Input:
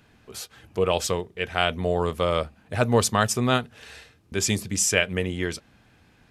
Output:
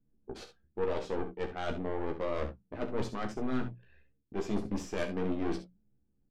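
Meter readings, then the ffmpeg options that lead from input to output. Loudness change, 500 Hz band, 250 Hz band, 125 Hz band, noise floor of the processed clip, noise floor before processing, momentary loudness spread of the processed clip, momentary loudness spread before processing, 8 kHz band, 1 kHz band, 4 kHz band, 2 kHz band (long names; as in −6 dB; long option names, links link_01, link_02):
−12.0 dB, −9.5 dB, −6.5 dB, −13.5 dB, −74 dBFS, −59 dBFS, 11 LU, 17 LU, −27.5 dB, −12.5 dB, −20.5 dB, −16.5 dB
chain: -filter_complex "[0:a]aeval=exprs='if(lt(val(0),0),0.708*val(0),val(0))':channel_layout=same,anlmdn=1,lowpass=3100,equalizer=frequency=310:width_type=o:width=1.5:gain=13.5,bandreject=frequency=60:width_type=h:width=6,bandreject=frequency=120:width_type=h:width=6,bandreject=frequency=180:width_type=h:width=6,areverse,acompressor=threshold=-26dB:ratio=6,areverse,aeval=exprs='(tanh(28.2*val(0)+0.8)-tanh(0.8))/28.2':channel_layout=same,flanger=delay=5.6:depth=6.5:regen=-63:speed=0.9:shape=triangular,asplit=2[link_01][link_02];[link_02]adelay=15,volume=-6dB[link_03];[link_01][link_03]amix=inputs=2:normalize=0,asplit=2[link_04][link_05];[link_05]aecho=0:1:39|66:0.188|0.299[link_06];[link_04][link_06]amix=inputs=2:normalize=0,volume=5dB"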